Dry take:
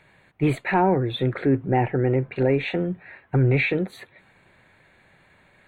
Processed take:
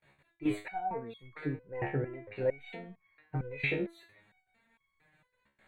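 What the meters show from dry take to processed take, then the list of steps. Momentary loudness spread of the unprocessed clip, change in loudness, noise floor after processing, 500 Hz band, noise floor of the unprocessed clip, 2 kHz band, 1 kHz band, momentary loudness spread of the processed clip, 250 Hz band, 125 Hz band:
7 LU, −13.5 dB, −80 dBFS, −13.0 dB, −59 dBFS, −11.0 dB, −13.5 dB, 14 LU, −14.0 dB, −16.5 dB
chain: noise gate with hold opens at −47 dBFS
step-sequenced resonator 4.4 Hz 70–1,100 Hz

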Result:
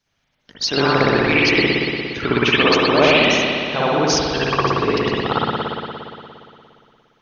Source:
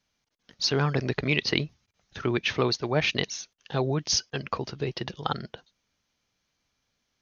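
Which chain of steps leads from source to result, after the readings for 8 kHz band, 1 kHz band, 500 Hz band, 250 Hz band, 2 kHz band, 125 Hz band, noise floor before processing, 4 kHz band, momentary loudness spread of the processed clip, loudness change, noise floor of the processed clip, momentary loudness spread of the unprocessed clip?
can't be measured, +15.0 dB, +13.0 dB, +12.0 dB, +14.0 dB, +5.0 dB, −78 dBFS, +10.0 dB, 11 LU, +11.0 dB, −69 dBFS, 9 LU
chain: harmonic and percussive parts rebalanced harmonic −15 dB
brickwall limiter −16.5 dBFS, peak gain reduction 9 dB
spring reverb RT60 2.5 s, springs 58 ms, chirp 70 ms, DRR −9.5 dB
level +7 dB

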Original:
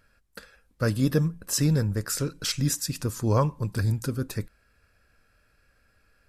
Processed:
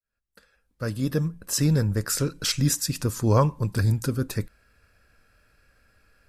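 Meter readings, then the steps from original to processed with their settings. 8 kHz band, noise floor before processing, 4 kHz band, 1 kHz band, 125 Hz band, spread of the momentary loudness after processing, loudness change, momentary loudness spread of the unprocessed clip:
+2.5 dB, −66 dBFS, +2.5 dB, +2.5 dB, +2.0 dB, 9 LU, +2.0 dB, 7 LU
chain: fade in at the beginning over 2.05 s
level +3 dB

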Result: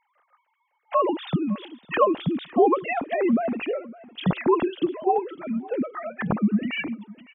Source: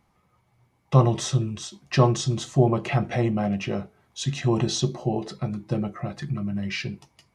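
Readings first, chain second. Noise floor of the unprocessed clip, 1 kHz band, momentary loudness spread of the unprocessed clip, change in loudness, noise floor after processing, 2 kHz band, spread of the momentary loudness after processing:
−68 dBFS, +5.5 dB, 11 LU, 0.0 dB, −73 dBFS, +3.0 dB, 10 LU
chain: three sine waves on the formant tracks
repeating echo 558 ms, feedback 22%, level −20.5 dB

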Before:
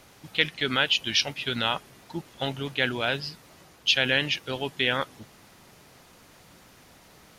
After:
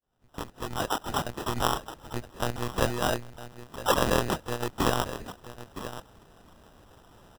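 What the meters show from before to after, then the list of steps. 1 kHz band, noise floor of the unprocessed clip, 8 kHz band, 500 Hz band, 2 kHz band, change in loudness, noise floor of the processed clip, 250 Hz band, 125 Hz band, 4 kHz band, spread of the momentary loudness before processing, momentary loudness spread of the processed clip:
+4.5 dB, −55 dBFS, +2.5 dB, +1.5 dB, −9.0 dB, −4.0 dB, −60 dBFS, +1.0 dB, +2.5 dB, −10.5 dB, 12 LU, 18 LU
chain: fade in at the beginning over 1.62 s
on a send: single-tap delay 968 ms −12.5 dB
on the sum: one-pitch LPC vocoder at 8 kHz 120 Hz
decimation without filtering 20×

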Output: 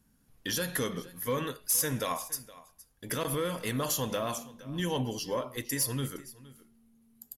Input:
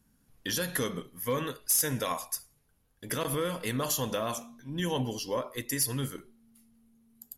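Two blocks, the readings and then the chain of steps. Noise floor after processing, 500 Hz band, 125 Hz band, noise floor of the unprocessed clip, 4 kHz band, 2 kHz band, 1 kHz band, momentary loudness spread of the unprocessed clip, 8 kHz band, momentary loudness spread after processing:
−68 dBFS, −0.5 dB, −0.5 dB, −70 dBFS, −0.5 dB, −0.5 dB, −0.5 dB, 11 LU, −1.0 dB, 12 LU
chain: on a send: single-tap delay 466 ms −20 dB
on the sum: soft clipping −19 dBFS, distortion −23 dB

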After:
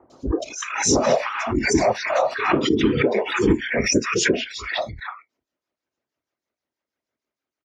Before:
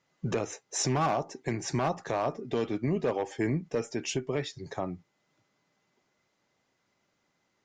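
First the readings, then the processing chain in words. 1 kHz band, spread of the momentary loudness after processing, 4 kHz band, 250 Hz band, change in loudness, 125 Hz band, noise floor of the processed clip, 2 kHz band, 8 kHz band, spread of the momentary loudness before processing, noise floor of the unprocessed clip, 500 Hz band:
+8.0 dB, 8 LU, +13.0 dB, +11.0 dB, +10.5 dB, +3.5 dB, below −85 dBFS, +16.5 dB, +11.5 dB, 8 LU, −76 dBFS, +10.0 dB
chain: comb filter 3.2 ms, depth 94%
automatic gain control gain up to 3.5 dB
amplitude tremolo 6.3 Hz, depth 64%
random phases in short frames
parametric band 180 Hz −10 dB 0.24 octaves
three-band delay without the direct sound lows, highs, mids 100/300 ms, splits 1,000/3,700 Hz
dynamic equaliser 880 Hz, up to −4 dB, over −44 dBFS, Q 2
low-pass filter 6,500 Hz 12 dB per octave
noise reduction from a noise print of the clip's start 23 dB
high-pass filter 41 Hz 24 dB per octave
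boost into a limiter +16 dB
background raised ahead of every attack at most 68 dB per second
level −6.5 dB

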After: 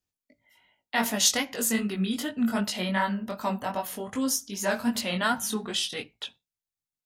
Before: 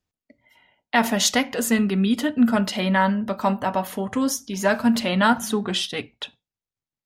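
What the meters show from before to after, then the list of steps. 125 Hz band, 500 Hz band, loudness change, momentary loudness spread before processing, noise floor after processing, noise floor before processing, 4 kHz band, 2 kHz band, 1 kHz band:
−8.0 dB, −7.5 dB, −5.5 dB, 7 LU, below −85 dBFS, below −85 dBFS, −3.0 dB, −5.5 dB, −7.5 dB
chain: high-shelf EQ 3,900 Hz +10.5 dB
chorus effect 2.6 Hz, delay 18.5 ms, depth 4.4 ms
level −5 dB

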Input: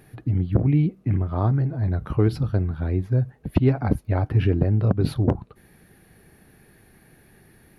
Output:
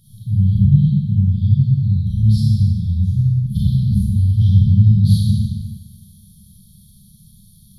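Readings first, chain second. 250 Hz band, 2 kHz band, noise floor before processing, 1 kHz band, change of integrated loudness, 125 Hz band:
+4.5 dB, below −40 dB, −56 dBFS, below −40 dB, +7.5 dB, +8.5 dB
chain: mains-hum notches 60/120/180 Hz
four-comb reverb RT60 1.3 s, combs from 28 ms, DRR −8 dB
brick-wall band-stop 220–3,100 Hz
level +1.5 dB

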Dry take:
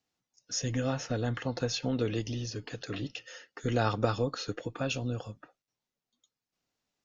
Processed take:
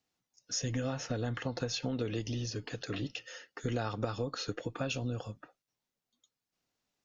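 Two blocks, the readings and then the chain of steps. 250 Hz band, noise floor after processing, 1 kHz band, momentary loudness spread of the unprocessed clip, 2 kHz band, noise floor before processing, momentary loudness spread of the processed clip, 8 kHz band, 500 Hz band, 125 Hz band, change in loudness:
−3.5 dB, below −85 dBFS, −5.5 dB, 10 LU, −3.0 dB, below −85 dBFS, 6 LU, can't be measured, −4.5 dB, −3.0 dB, −3.5 dB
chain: downward compressor 6 to 1, threshold −30 dBFS, peak gain reduction 8.5 dB

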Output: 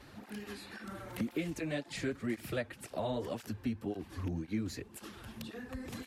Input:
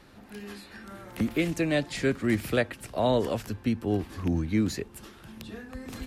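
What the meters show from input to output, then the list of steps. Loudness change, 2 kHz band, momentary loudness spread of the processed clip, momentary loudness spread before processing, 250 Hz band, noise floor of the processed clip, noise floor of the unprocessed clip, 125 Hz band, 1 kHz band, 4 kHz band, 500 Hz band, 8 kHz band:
−11.5 dB, −9.5 dB, 9 LU, 18 LU, −9.5 dB, −56 dBFS, −51 dBFS, −9.5 dB, −10.0 dB, −8.5 dB, −10.5 dB, −7.0 dB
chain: downward compressor 2 to 1, threshold −42 dBFS, peak gain reduction 12.5 dB
through-zero flanger with one copy inverted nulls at 1.9 Hz, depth 6.5 ms
level +3 dB

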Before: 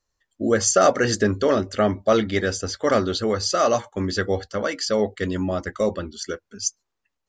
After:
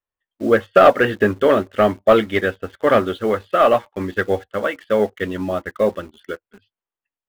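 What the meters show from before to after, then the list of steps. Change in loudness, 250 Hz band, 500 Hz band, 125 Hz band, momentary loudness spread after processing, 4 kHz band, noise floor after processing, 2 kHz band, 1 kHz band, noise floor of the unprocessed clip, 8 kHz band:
+4.0 dB, +1.5 dB, +5.0 dB, −1.5 dB, 12 LU, −4.0 dB, below −85 dBFS, +5.0 dB, +5.5 dB, −80 dBFS, below −20 dB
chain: Butterworth low-pass 3,500 Hz 72 dB per octave
low-shelf EQ 220 Hz −8 dB
leveller curve on the samples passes 1
in parallel at −8 dB: bit reduction 6 bits
on the sum: expander for the loud parts 1.5 to 1, over −29 dBFS
level +2.5 dB

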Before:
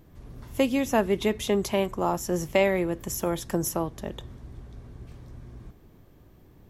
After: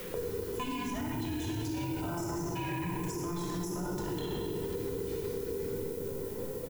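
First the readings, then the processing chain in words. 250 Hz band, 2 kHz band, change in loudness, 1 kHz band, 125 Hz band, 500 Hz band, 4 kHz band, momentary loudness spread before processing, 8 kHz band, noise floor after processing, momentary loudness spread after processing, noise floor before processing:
−6.0 dB, −10.0 dB, −9.0 dB, −7.5 dB, −2.0 dB, −8.5 dB, −7.0 dB, 22 LU, −8.0 dB, −40 dBFS, 2 LU, −54 dBFS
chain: frequency inversion band by band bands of 500 Hz
dynamic equaliser 330 Hz, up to +6 dB, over −40 dBFS, Q 1.6
on a send: echo with shifted repeats 91 ms, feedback 34%, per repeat −46 Hz, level −15 dB
on the sum: noise gate with hold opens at −43 dBFS
reversed playback
downward compressor, threshold −33 dBFS, peak gain reduction 16.5 dB
reversed playback
low-pass filter 8,400 Hz 12 dB per octave
high-shelf EQ 4,400 Hz +10 dB
rectangular room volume 3,400 cubic metres, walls mixed, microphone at 5.9 metres
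brickwall limiter −26.5 dBFS, peak gain reduction 13.5 dB
background noise violet −51 dBFS
multiband upward and downward compressor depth 100%
level −1.5 dB

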